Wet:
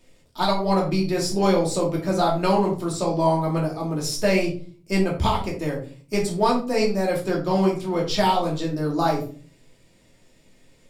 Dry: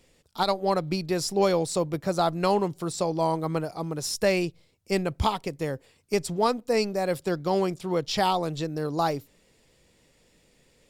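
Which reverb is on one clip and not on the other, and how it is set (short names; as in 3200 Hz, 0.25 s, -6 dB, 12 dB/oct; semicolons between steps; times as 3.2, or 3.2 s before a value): shoebox room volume 280 m³, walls furnished, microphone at 2.7 m; gain -1.5 dB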